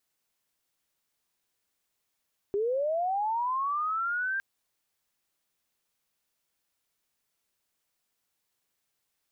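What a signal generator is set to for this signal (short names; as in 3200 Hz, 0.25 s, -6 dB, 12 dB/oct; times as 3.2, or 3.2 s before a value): chirp linear 390 Hz -> 1600 Hz -25 dBFS -> -27.5 dBFS 1.86 s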